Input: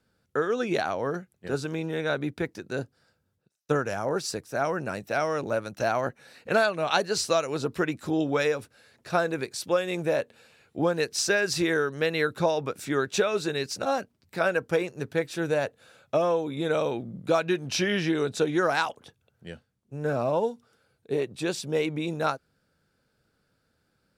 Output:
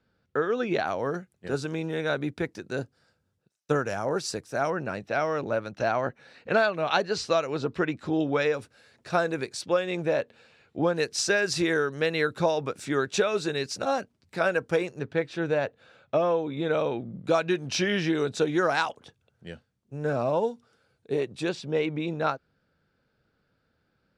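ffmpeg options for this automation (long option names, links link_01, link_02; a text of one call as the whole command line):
ffmpeg -i in.wav -af "asetnsamples=nb_out_samples=441:pad=0,asendcmd='0.87 lowpass f 10000;4.7 lowpass f 4400;8.54 lowpass f 8700;9.61 lowpass f 5200;10.96 lowpass f 9100;14.99 lowpass f 3900;17.27 lowpass f 8200;21.49 lowpass f 3900',lowpass=4100" out.wav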